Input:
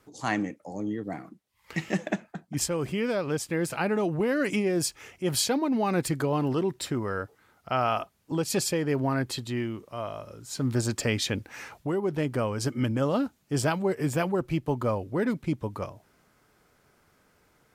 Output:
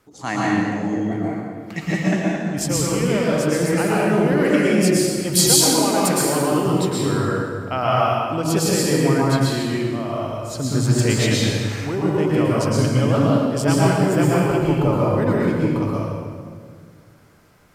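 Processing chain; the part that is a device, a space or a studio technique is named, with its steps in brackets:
0:05.35–0:06.52: bass and treble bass −9 dB, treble +9 dB
stairwell (convolution reverb RT60 1.9 s, pre-delay 106 ms, DRR −5.5 dB)
level +2 dB

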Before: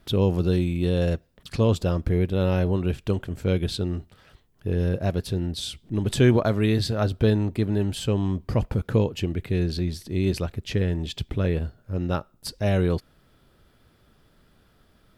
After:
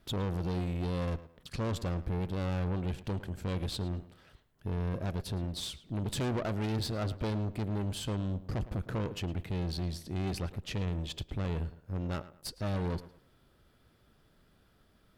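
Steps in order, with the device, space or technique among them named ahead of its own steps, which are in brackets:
rockabilly slapback (tube saturation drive 26 dB, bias 0.55; tape delay 109 ms, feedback 33%, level −13.5 dB, low-pass 2,900 Hz)
level −3.5 dB

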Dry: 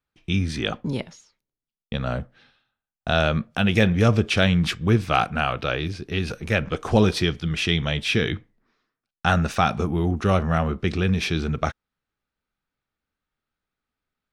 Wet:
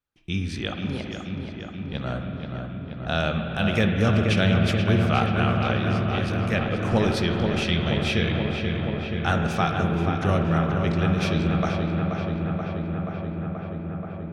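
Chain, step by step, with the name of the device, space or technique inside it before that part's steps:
dub delay into a spring reverb (feedback echo with a low-pass in the loop 480 ms, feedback 83%, low-pass 3,400 Hz, level −6 dB; spring reverb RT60 3 s, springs 48/54 ms, chirp 25 ms, DRR 4.5 dB)
level −4.5 dB

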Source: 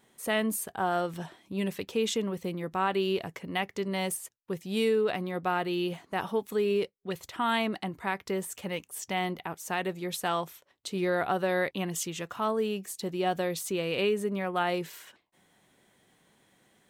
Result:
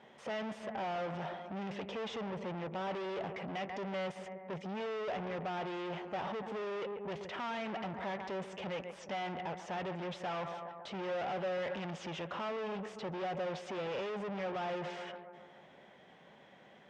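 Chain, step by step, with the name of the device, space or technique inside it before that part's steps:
analogue delay pedal into a guitar amplifier (bucket-brigade delay 138 ms, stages 2,048, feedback 57%, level −19 dB; tube saturation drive 46 dB, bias 0.4; loudspeaker in its box 87–4,500 Hz, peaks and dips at 110 Hz −9 dB, 300 Hz −5 dB, 580 Hz +7 dB, 830 Hz +4 dB, 4,200 Hz −9 dB)
level +7.5 dB

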